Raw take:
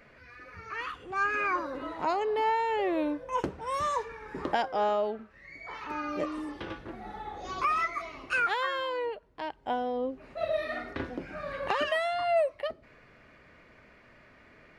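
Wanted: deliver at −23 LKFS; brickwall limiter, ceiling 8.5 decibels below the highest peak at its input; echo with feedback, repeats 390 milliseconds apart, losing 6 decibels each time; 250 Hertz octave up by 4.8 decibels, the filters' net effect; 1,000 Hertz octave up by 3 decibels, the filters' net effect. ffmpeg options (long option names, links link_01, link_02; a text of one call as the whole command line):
ffmpeg -i in.wav -af "equalizer=frequency=250:width_type=o:gain=6,equalizer=frequency=1000:width_type=o:gain=3.5,alimiter=limit=-21dB:level=0:latency=1,aecho=1:1:390|780|1170|1560|1950|2340:0.501|0.251|0.125|0.0626|0.0313|0.0157,volume=7dB" out.wav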